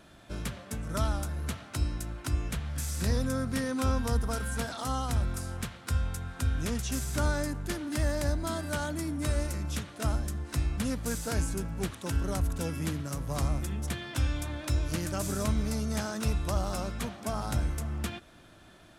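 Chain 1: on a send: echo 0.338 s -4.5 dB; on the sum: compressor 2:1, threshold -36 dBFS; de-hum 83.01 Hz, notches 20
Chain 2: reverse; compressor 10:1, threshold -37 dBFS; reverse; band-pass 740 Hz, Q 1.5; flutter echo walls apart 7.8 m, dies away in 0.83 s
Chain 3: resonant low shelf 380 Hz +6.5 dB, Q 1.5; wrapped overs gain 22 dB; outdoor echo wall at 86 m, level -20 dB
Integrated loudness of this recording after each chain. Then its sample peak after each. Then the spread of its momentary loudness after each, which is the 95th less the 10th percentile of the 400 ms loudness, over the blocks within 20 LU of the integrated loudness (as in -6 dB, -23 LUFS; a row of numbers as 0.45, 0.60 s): -37.0, -49.0, -28.0 LUFS; -21.5, -31.0, -21.0 dBFS; 3, 9, 4 LU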